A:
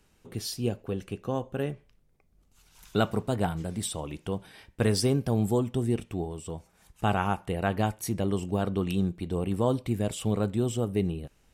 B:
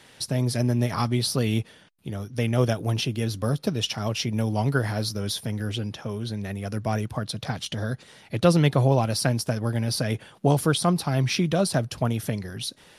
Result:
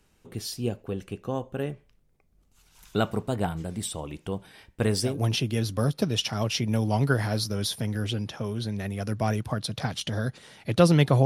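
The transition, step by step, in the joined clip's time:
A
5.11 s: go over to B from 2.76 s, crossfade 0.18 s

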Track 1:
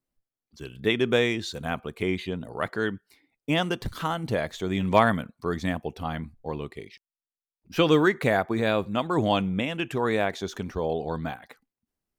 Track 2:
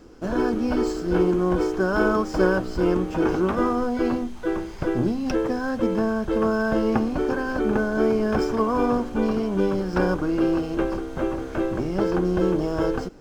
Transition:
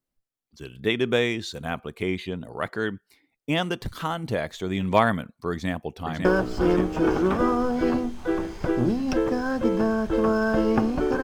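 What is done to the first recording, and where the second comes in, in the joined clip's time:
track 1
5.51–6.25 s: echo throw 550 ms, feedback 65%, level -5 dB
6.25 s: go over to track 2 from 2.43 s

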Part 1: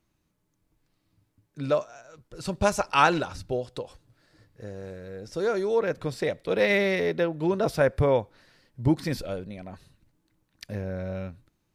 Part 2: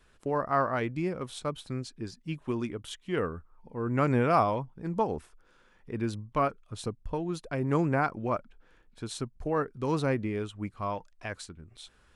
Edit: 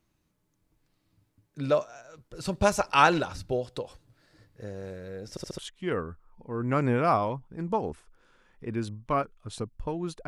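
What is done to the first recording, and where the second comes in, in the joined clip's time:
part 1
5.30 s: stutter in place 0.07 s, 4 plays
5.58 s: go over to part 2 from 2.84 s

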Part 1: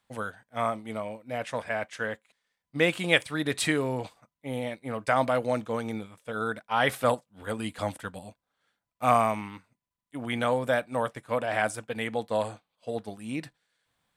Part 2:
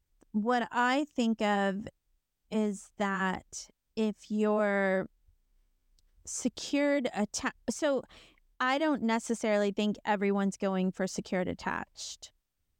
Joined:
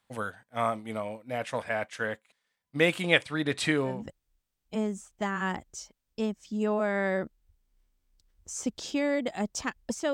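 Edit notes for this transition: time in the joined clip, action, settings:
part 1
3.02–4.04 s: distance through air 52 m
3.94 s: go over to part 2 from 1.73 s, crossfade 0.20 s

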